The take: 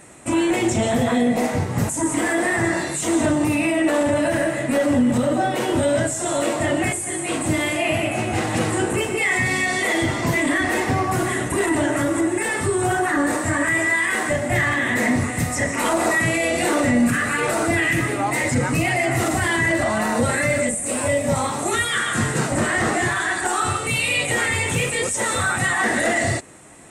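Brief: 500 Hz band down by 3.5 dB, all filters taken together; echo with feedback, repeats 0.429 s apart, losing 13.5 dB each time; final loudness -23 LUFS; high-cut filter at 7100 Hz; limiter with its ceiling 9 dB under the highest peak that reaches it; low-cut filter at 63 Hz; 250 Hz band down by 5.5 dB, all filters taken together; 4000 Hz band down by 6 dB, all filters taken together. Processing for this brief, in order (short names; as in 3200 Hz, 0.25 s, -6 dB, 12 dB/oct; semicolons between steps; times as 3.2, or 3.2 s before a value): HPF 63 Hz; LPF 7100 Hz; bell 250 Hz -6 dB; bell 500 Hz -3 dB; bell 4000 Hz -8 dB; limiter -19.5 dBFS; feedback echo 0.429 s, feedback 21%, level -13.5 dB; gain +4 dB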